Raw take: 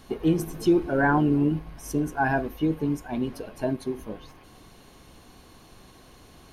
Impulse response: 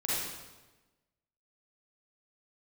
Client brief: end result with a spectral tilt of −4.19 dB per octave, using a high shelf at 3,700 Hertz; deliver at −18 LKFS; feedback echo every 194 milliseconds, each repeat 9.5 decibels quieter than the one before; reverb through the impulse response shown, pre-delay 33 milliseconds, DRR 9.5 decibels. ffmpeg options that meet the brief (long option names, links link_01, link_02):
-filter_complex "[0:a]highshelf=frequency=3700:gain=5.5,aecho=1:1:194|388|582|776:0.335|0.111|0.0365|0.012,asplit=2[link_01][link_02];[1:a]atrim=start_sample=2205,adelay=33[link_03];[link_02][link_03]afir=irnorm=-1:irlink=0,volume=-16.5dB[link_04];[link_01][link_04]amix=inputs=2:normalize=0,volume=7dB"